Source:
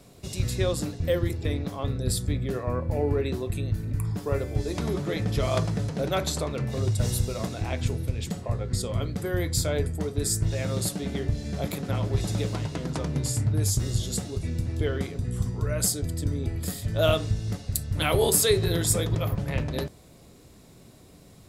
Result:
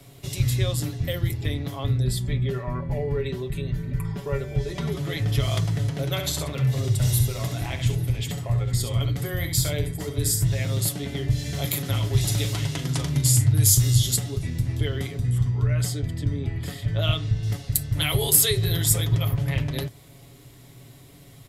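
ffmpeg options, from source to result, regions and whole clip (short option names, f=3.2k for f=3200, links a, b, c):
-filter_complex "[0:a]asettb=1/sr,asplit=3[a][b][c];[a]atrim=end=2.044[d];[b]atrim=start=2.04:end=4.92,asetpts=PTS-STARTPTS,afade=t=in:d=0.004:c=qsin,afade=t=out:st=2.876:d=0.004:c=qsin,aemphasis=mode=reproduction:type=50kf,aecho=1:1:5.1:0.75,atrim=end_sample=127008[e];[c]atrim=start=4.916[f];[d][e]acrossfade=d=0.004:c1=hsin:c2=qsin[g];[g][f]acrossfade=d=0.004:c1=qsin:c2=hsin,asettb=1/sr,asplit=3[h][i][j];[h]atrim=end=6.044[k];[i]atrim=start=6.04:end=10.59,asetpts=PTS-STARTPTS,afade=t=in:d=0.004:c=qsin,afade=t=out:st=4.546:d=0.004:c=qsin,bandreject=f=50:t=h:w=6,bandreject=f=100:t=h:w=6,bandreject=f=150:t=h:w=6,bandreject=f=200:t=h:w=6,bandreject=f=250:t=h:w=6,bandreject=f=300:t=h:w=6,bandreject=f=350:t=h:w=6,bandreject=f=400:t=h:w=6,bandreject=f=450:t=h:w=6,aecho=1:1:68|451:0.398|0.1,atrim=end_sample=200655[l];[j]atrim=start=10.586[m];[k][l]acrossfade=d=0.004:c1=hsin:c2=qsin[n];[n][m]acrossfade=d=0.004:c1=qsin:c2=hsin,asettb=1/sr,asplit=3[o][p][q];[o]atrim=end=11.304[r];[p]atrim=start=11.3:end=14.16,asetpts=PTS-STARTPTS,afade=t=in:d=0.004:c=qsin,afade=t=out:st=2.856:d=0.004:c=qsin,highshelf=f=3k:g=8,asplit=2[s][t];[t]adelay=40,volume=-11dB[u];[s][u]amix=inputs=2:normalize=0,atrim=end_sample=126126[v];[q]atrim=start=14.156[w];[r][v]acrossfade=d=0.004:c1=hsin:c2=qsin[x];[x][w]acrossfade=d=0.004:c1=qsin:c2=hsin,asettb=1/sr,asplit=3[y][z][aa];[y]atrim=end=15.384[ab];[z]atrim=start=15.38:end=17.43,asetpts=PTS-STARTPTS,afade=t=in:d=0.004:c=qsin,afade=t=out:st=2.046:d=0.004:c=qsin,lowpass=2.8k,aemphasis=mode=production:type=50fm[ac];[aa]atrim=start=17.426[ad];[ab][ac]acrossfade=d=0.004:c1=hsin:c2=qsin[ae];[ae][ad]acrossfade=d=0.004:c1=qsin:c2=hsin,equalizer=f=125:t=o:w=0.33:g=8,equalizer=f=200:t=o:w=0.33:g=-6,equalizer=f=500:t=o:w=0.33:g=-4,equalizer=f=2k:t=o:w=0.33:g=6,equalizer=f=3.15k:t=o:w=0.33:g=7,equalizer=f=12.5k:t=o:w=0.33:g=9,acrossover=split=160|3000[af][ag][ah];[ag]acompressor=threshold=-35dB:ratio=2[ai];[af][ai][ah]amix=inputs=3:normalize=0,aecho=1:1:7.2:0.4,volume=1dB"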